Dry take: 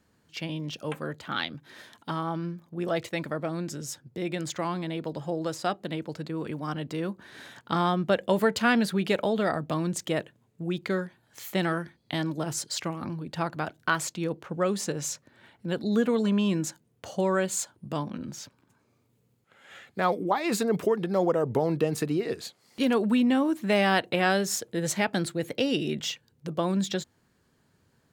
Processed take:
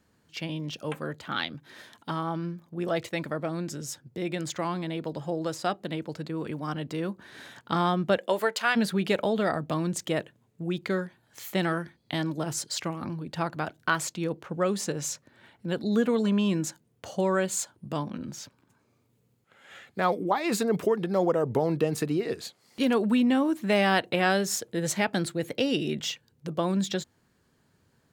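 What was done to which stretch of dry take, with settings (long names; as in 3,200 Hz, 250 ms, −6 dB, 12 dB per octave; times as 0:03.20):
0:08.18–0:08.75: high-pass filter 290 Hz → 780 Hz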